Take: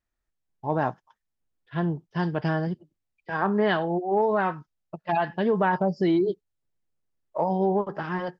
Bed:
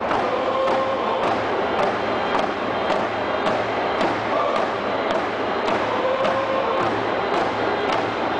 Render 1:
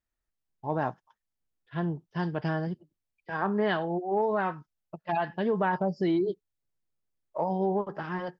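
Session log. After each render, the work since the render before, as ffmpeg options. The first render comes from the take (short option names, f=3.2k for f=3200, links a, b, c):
-af "volume=-4dB"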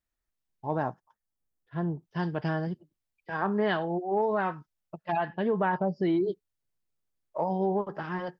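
-filter_complex "[0:a]asettb=1/sr,asplit=3[a][b][c];[a]atrim=end=0.824[d];[b]atrim=start=0.82:end=2.03,asetpts=PTS-STARTPTS,afade=t=in:d=0.004:c=qsin,afade=t=out:st=1.206:d=0.004:c=qsin,equalizer=f=3.1k:t=o:w=1.7:g=-9.5[e];[c]atrim=start=2.026[f];[d][e]acrossfade=d=0.004:c1=hsin:c2=qsin[g];[g][f]acrossfade=d=0.004:c1=qsin:c2=hsin,asettb=1/sr,asplit=3[h][i][j];[h]atrim=end=5.144[k];[i]atrim=start=5.14:end=6.23,asetpts=PTS-STARTPTS,afade=t=in:d=0.004:c=qsin,afade=t=out:st=1.086:d=0.004:c=qsin,lowpass=3.5k[l];[j]atrim=start=6.226[m];[k][l]acrossfade=d=0.004:c1=hsin:c2=qsin[n];[n][m]acrossfade=d=0.004:c1=qsin:c2=hsin"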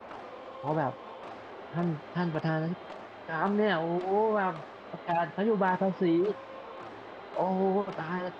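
-filter_complex "[1:a]volume=-22.5dB[a];[0:a][a]amix=inputs=2:normalize=0"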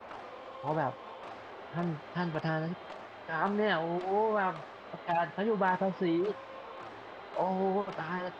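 -af "equalizer=f=250:t=o:w=2.3:g=-4.5"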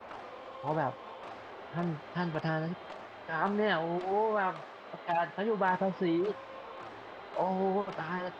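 -filter_complex "[0:a]asettb=1/sr,asplit=3[a][b][c];[a]atrim=end=4.134[d];[b]atrim=start=4.13:end=5.69,asetpts=PTS-STARTPTS,afade=t=in:d=0.004:c=qsin,afade=t=out:st=1.556:d=0.004:c=qsin,highpass=f=180:p=1[e];[c]atrim=start=5.686[f];[d][e]acrossfade=d=0.004:c1=hsin:c2=qsin[g];[g][f]acrossfade=d=0.004:c1=qsin:c2=hsin"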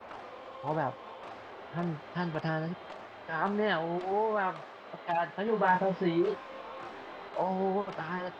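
-filter_complex "[0:a]asettb=1/sr,asplit=3[a][b][c];[a]atrim=end=5.454[d];[b]atrim=start=5.45:end=7.29,asetpts=PTS-STARTPTS,afade=t=in:d=0.004:c=qsin,afade=t=out:st=1.836:d=0.004:c=qsin,asplit=2[e][f];[f]adelay=23,volume=-2dB[g];[e][g]amix=inputs=2:normalize=0,atrim=end_sample=81144[h];[c]atrim=start=7.286[i];[d][h]acrossfade=d=0.004:c1=hsin:c2=qsin[j];[j][i]acrossfade=d=0.004:c1=qsin:c2=hsin"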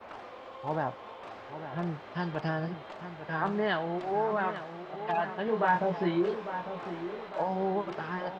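-filter_complex "[0:a]asplit=2[a][b];[b]adelay=850,lowpass=f=2k:p=1,volume=-10dB,asplit=2[c][d];[d]adelay=850,lowpass=f=2k:p=1,volume=0.49,asplit=2[e][f];[f]adelay=850,lowpass=f=2k:p=1,volume=0.49,asplit=2[g][h];[h]adelay=850,lowpass=f=2k:p=1,volume=0.49,asplit=2[i][j];[j]adelay=850,lowpass=f=2k:p=1,volume=0.49[k];[a][c][e][g][i][k]amix=inputs=6:normalize=0"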